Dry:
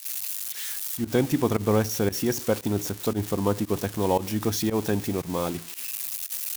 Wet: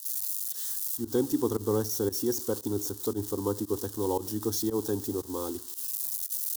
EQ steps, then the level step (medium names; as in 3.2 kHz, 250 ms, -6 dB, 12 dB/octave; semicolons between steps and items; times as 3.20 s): bass shelf 62 Hz -9 dB; peaking EQ 1.5 kHz -9.5 dB 1.8 oct; static phaser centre 630 Hz, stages 6; 0.0 dB